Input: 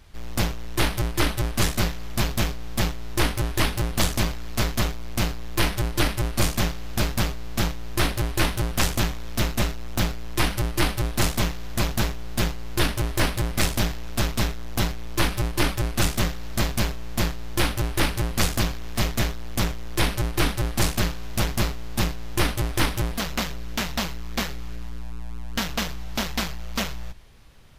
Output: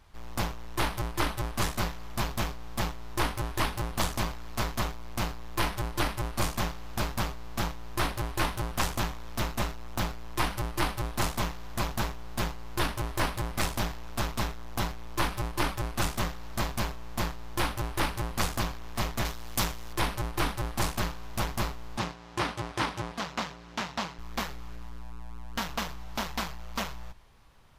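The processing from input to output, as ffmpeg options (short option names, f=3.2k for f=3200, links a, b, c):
-filter_complex "[0:a]asettb=1/sr,asplit=3[a][b][c];[a]atrim=end=19.254[d];[b]atrim=start=19.25:end=19.93,asetpts=PTS-STARTPTS,afade=t=in:d=0.004:c=qsin,afade=t=out:st=0.676:d=0.004:c=qsin,highshelf=f=3k:g=10[e];[c]atrim=start=19.926[f];[d][e]acrossfade=d=0.004:c1=hsin:c2=qsin[g];[g][f]acrossfade=d=0.004:c1=qsin:c2=hsin,asettb=1/sr,asplit=3[h][i][j];[h]atrim=end=21.974[k];[i]atrim=start=21.97:end=24.19,asetpts=PTS-STARTPTS,afade=t=in:d=0.004:c=qsin,afade=t=out:st=2.216:d=0.004:c=qsin,highpass=100,lowpass=6.9k[l];[j]atrim=start=24.186[m];[k][l]acrossfade=d=0.004:c1=hsin:c2=qsin[n];[n][m]acrossfade=d=0.004:c1=qsin:c2=hsin,equalizer=f=990:w=1.3:g=8,volume=-8dB"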